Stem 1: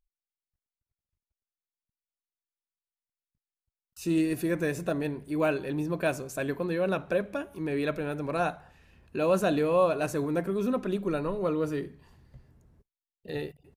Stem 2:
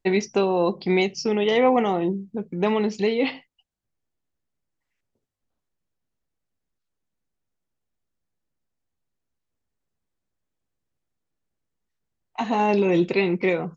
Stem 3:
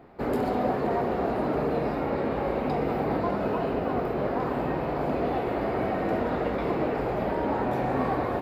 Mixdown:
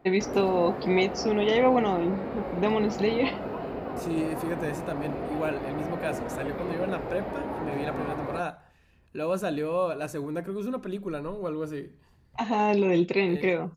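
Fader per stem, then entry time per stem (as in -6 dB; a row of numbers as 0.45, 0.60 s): -3.5, -3.0, -6.5 dB; 0.00, 0.00, 0.00 s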